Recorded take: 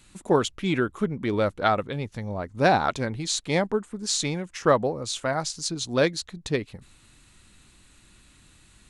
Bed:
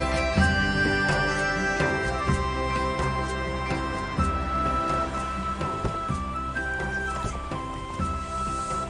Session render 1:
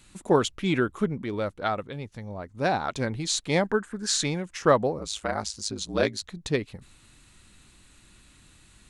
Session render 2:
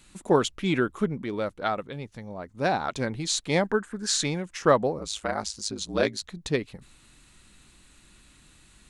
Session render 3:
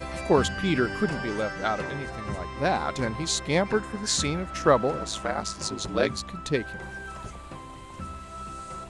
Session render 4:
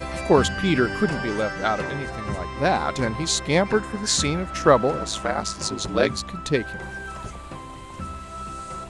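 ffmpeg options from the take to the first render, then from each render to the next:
ffmpeg -i in.wav -filter_complex "[0:a]asettb=1/sr,asplit=3[link_01][link_02][link_03];[link_01]atrim=end=3.654[link_04];[link_02]atrim=start=3.65:end=4.24,asetpts=PTS-STARTPTS,afade=type=in:duration=0.004:curve=qsin,afade=type=out:start_time=0.586:duration=0.004:curve=qsin,equalizer=frequency=1600:width_type=o:width=0.42:gain=15[link_05];[link_03]atrim=start=4.236[link_06];[link_04][link_05]acrossfade=duration=0.004:curve1=hsin:curve2=qsin[link_07];[link_07][link_06]acrossfade=duration=0.004:curve1=qsin:curve2=hsin,asettb=1/sr,asplit=3[link_08][link_09][link_10];[link_08]atrim=end=4.984[link_11];[link_09]atrim=start=4.98:end=6.24,asetpts=PTS-STARTPTS,afade=type=in:duration=0.004:curve=qsin,afade=type=out:start_time=1.256:duration=0.004:curve=qsin,aeval=exprs='val(0)*sin(2*PI*53*n/s)':channel_layout=same[link_12];[link_10]atrim=start=6.236[link_13];[link_11][link_12]acrossfade=duration=0.004:curve1=hsin:curve2=qsin[link_14];[link_14][link_13]acrossfade=duration=0.004:curve1=qsin:curve2=hsin,asplit=3[link_15][link_16][link_17];[link_15]atrim=end=1.222[link_18];[link_16]atrim=start=1.218:end=2.962,asetpts=PTS-STARTPTS,volume=-5.5dB[link_19];[link_17]atrim=start=2.958[link_20];[link_18][link_19]acrossfade=duration=0.004:curve1=hsin:curve2=hsin[link_21];[link_21][link_20]acrossfade=duration=0.004:curve1=hsin:curve2=hsin" out.wav
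ffmpeg -i in.wav -af "equalizer=frequency=97:width_type=o:width=0.36:gain=-8" out.wav
ffmpeg -i in.wav -i bed.wav -filter_complex "[1:a]volume=-9.5dB[link_01];[0:a][link_01]amix=inputs=2:normalize=0" out.wav
ffmpeg -i in.wav -af "volume=4dB" out.wav

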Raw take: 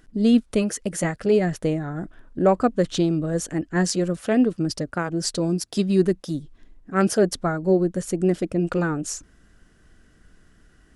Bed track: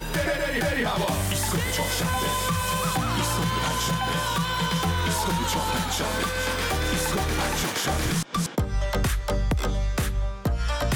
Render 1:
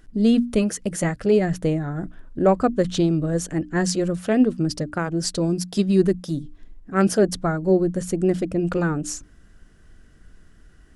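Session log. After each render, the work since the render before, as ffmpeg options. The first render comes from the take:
ffmpeg -i in.wav -af "lowshelf=frequency=150:gain=6.5,bandreject=frequency=60:width_type=h:width=6,bandreject=frequency=120:width_type=h:width=6,bandreject=frequency=180:width_type=h:width=6,bandreject=frequency=240:width_type=h:width=6,bandreject=frequency=300:width_type=h:width=6" out.wav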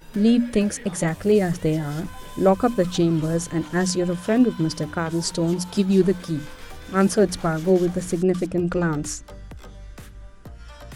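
ffmpeg -i in.wav -i bed.wav -filter_complex "[1:a]volume=-16dB[link_01];[0:a][link_01]amix=inputs=2:normalize=0" out.wav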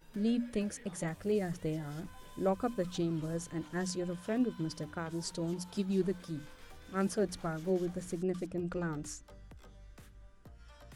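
ffmpeg -i in.wav -af "volume=-14dB" out.wav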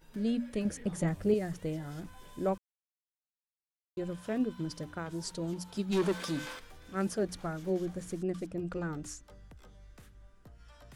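ffmpeg -i in.wav -filter_complex "[0:a]asettb=1/sr,asplit=3[link_01][link_02][link_03];[link_01]atrim=end=0.654[link_04];[link_02]atrim=start=0.65:end=1.34,asetpts=PTS-STARTPTS,afade=type=in:duration=0.004:curve=qsin,afade=type=out:start_time=0.686:duration=0.004:curve=qsin,lowshelf=frequency=480:gain=8.5[link_05];[link_03]atrim=start=1.336[link_06];[link_04][link_05]acrossfade=duration=0.004:curve1=hsin:curve2=qsin[link_07];[link_07][link_06]acrossfade=duration=0.004:curve1=qsin:curve2=hsin,asplit=3[link_08][link_09][link_10];[link_08]afade=type=out:start_time=5.91:duration=0.02[link_11];[link_09]asplit=2[link_12][link_13];[link_13]highpass=frequency=720:poles=1,volume=22dB,asoftclip=type=tanh:threshold=-20.5dB[link_14];[link_12][link_14]amix=inputs=2:normalize=0,lowpass=frequency=7700:poles=1,volume=-6dB,afade=type=in:start_time=5.91:duration=0.02,afade=type=out:start_time=6.58:duration=0.02[link_15];[link_10]afade=type=in:start_time=6.58:duration=0.02[link_16];[link_11][link_15][link_16]amix=inputs=3:normalize=0,asplit=3[link_17][link_18][link_19];[link_17]atrim=end=2.58,asetpts=PTS-STARTPTS,afade=type=out:start_time=2.576:duration=0.004:curve=hsin[link_20];[link_18]atrim=start=2.58:end=3.97,asetpts=PTS-STARTPTS,volume=0[link_21];[link_19]atrim=start=3.97,asetpts=PTS-STARTPTS,afade=type=in:duration=0.004:curve=hsin[link_22];[link_20][link_21][link_22]concat=n=3:v=0:a=1" out.wav

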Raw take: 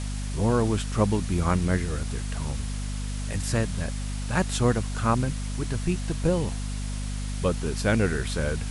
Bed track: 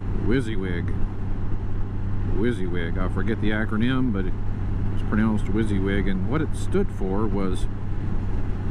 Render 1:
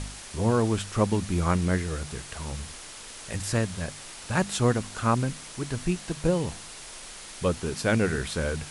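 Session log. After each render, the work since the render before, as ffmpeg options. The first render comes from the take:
ffmpeg -i in.wav -af "bandreject=frequency=50:width_type=h:width=4,bandreject=frequency=100:width_type=h:width=4,bandreject=frequency=150:width_type=h:width=4,bandreject=frequency=200:width_type=h:width=4,bandreject=frequency=250:width_type=h:width=4" out.wav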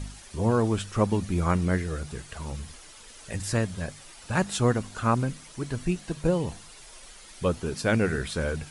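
ffmpeg -i in.wav -af "afftdn=noise_reduction=9:noise_floor=-43" out.wav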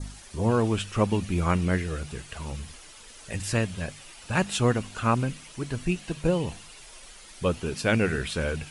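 ffmpeg -i in.wav -af "adynamicequalizer=threshold=0.00224:dfrequency=2700:dqfactor=2.5:tfrequency=2700:tqfactor=2.5:attack=5:release=100:ratio=0.375:range=4:mode=boostabove:tftype=bell" out.wav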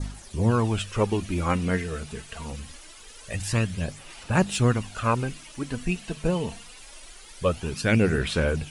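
ffmpeg -i in.wav -af "aphaser=in_gain=1:out_gain=1:delay=4.6:decay=0.43:speed=0.24:type=sinusoidal" out.wav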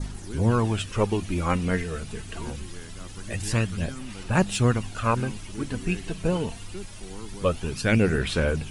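ffmpeg -i in.wav -i bed.wav -filter_complex "[1:a]volume=-16dB[link_01];[0:a][link_01]amix=inputs=2:normalize=0" out.wav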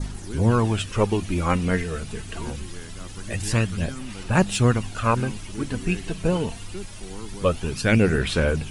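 ffmpeg -i in.wav -af "volume=2.5dB" out.wav

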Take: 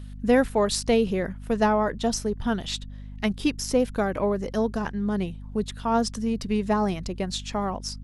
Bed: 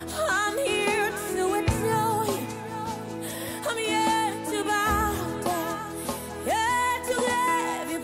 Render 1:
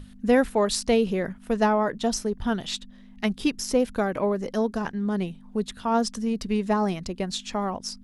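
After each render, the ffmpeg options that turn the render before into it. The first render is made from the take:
ffmpeg -i in.wav -af "bandreject=frequency=50:width_type=h:width=6,bandreject=frequency=100:width_type=h:width=6,bandreject=frequency=150:width_type=h:width=6" out.wav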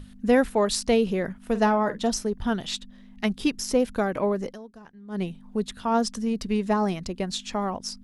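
ffmpeg -i in.wav -filter_complex "[0:a]asettb=1/sr,asplit=3[link_01][link_02][link_03];[link_01]atrim=end=1.424[link_04];[link_02]atrim=start=1.42:end=2.1,asetpts=PTS-STARTPTS,afade=type=in:duration=0.004:curve=qsin,afade=type=out:start_time=0.676:duration=0.004:curve=qsin,asplit=2[link_05][link_06];[link_06]adelay=48,volume=-13dB[link_07];[link_05][link_07]amix=inputs=2:normalize=0,atrim=end_sample=29988[link_08];[link_03]atrim=start=2.096[link_09];[link_04][link_08]acrossfade=duration=0.004:curve1=hsin:curve2=qsin[link_10];[link_10][link_09]acrossfade=duration=0.004:curve1=qsin:curve2=hsin,asplit=3[link_11][link_12][link_13];[link_11]atrim=end=4.58,asetpts=PTS-STARTPTS,afade=type=out:start_time=4.45:duration=0.13:silence=0.11885[link_14];[link_12]atrim=start=4.58:end=5.08,asetpts=PTS-STARTPTS,volume=-18.5dB[link_15];[link_13]atrim=start=5.08,asetpts=PTS-STARTPTS,afade=type=in:duration=0.13:silence=0.11885[link_16];[link_14][link_15][link_16]concat=n=3:v=0:a=1" out.wav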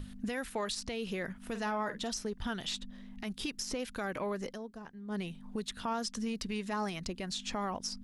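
ffmpeg -i in.wav -filter_complex "[0:a]acrossover=split=1300|7600[link_01][link_02][link_03];[link_01]acompressor=threshold=-35dB:ratio=4[link_04];[link_02]acompressor=threshold=-35dB:ratio=4[link_05];[link_03]acompressor=threshold=-50dB:ratio=4[link_06];[link_04][link_05][link_06]amix=inputs=3:normalize=0,alimiter=level_in=2.5dB:limit=-24dB:level=0:latency=1:release=39,volume=-2.5dB" out.wav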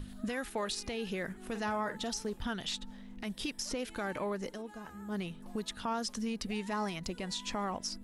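ffmpeg -i in.wav -i bed.wav -filter_complex "[1:a]volume=-30dB[link_01];[0:a][link_01]amix=inputs=2:normalize=0" out.wav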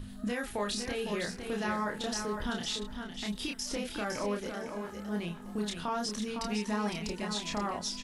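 ffmpeg -i in.wav -filter_complex "[0:a]asplit=2[link_01][link_02];[link_02]adelay=29,volume=-3dB[link_03];[link_01][link_03]amix=inputs=2:normalize=0,aecho=1:1:508|1016|1524:0.473|0.0852|0.0153" out.wav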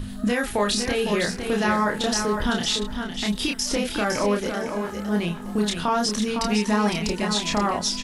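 ffmpeg -i in.wav -af "volume=11dB" out.wav

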